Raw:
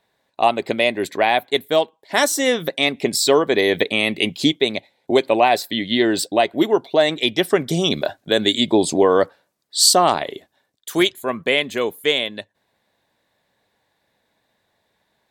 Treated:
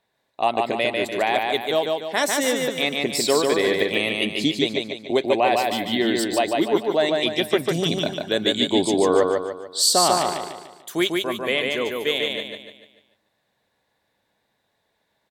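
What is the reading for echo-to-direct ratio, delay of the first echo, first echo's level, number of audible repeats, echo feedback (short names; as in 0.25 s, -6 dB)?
-2.0 dB, 0.147 s, -3.0 dB, 5, 43%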